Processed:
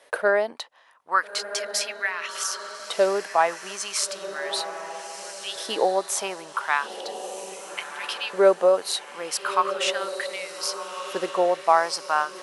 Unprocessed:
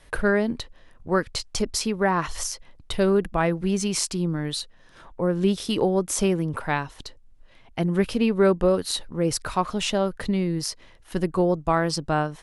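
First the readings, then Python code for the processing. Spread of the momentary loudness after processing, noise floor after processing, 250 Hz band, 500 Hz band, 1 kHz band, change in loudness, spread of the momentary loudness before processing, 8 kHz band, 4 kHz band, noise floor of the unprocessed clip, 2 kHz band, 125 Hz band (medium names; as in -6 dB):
13 LU, -45 dBFS, -14.5 dB, 0.0 dB, +4.0 dB, -1.0 dB, 10 LU, +1.0 dB, +2.0 dB, -53 dBFS, +3.5 dB, under -20 dB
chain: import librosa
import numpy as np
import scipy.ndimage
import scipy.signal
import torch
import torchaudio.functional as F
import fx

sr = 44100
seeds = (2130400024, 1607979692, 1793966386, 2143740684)

y = fx.filter_lfo_highpass(x, sr, shape='saw_up', hz=0.36, low_hz=510.0, high_hz=3400.0, q=2.3)
y = fx.echo_diffused(y, sr, ms=1353, feedback_pct=41, wet_db=-10.0)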